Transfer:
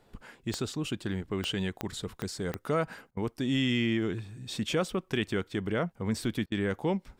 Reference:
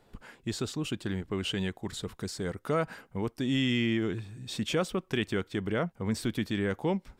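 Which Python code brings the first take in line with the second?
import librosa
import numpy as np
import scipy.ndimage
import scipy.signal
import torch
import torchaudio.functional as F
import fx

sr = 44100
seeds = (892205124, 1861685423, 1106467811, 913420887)

y = fx.fix_declick_ar(x, sr, threshold=10.0)
y = fx.fix_interpolate(y, sr, at_s=(3.11, 6.46), length_ms=57.0)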